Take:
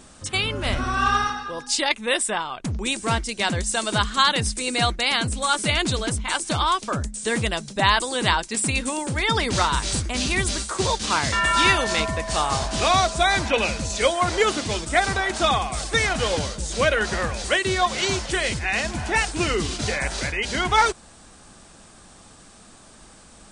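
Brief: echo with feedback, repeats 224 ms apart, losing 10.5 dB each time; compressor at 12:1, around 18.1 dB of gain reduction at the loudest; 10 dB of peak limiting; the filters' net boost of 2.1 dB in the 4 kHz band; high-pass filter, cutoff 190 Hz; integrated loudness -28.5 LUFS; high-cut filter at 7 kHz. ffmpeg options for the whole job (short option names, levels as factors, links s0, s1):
-af "highpass=190,lowpass=7000,equalizer=f=4000:t=o:g=3,acompressor=threshold=0.0251:ratio=12,alimiter=level_in=1.58:limit=0.0631:level=0:latency=1,volume=0.631,aecho=1:1:224|448|672:0.299|0.0896|0.0269,volume=2.66"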